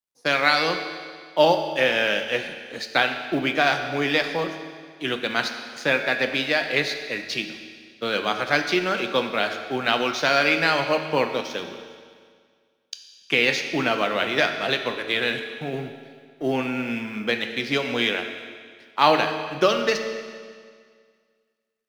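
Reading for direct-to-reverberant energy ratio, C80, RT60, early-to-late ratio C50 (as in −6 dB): 5.5 dB, 8.5 dB, 1.9 s, 7.5 dB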